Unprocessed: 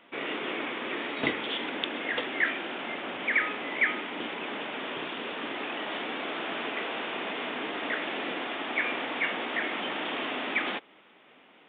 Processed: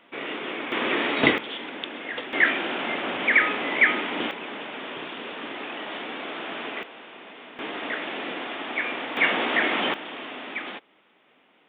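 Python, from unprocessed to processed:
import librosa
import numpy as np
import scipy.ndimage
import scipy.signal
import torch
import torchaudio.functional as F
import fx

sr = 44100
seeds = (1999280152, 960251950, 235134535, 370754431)

y = fx.gain(x, sr, db=fx.steps((0.0, 1.0), (0.72, 9.0), (1.38, -2.0), (2.33, 7.0), (4.31, 0.0), (6.83, -10.0), (7.59, 1.0), (9.17, 8.0), (9.94, -4.0)))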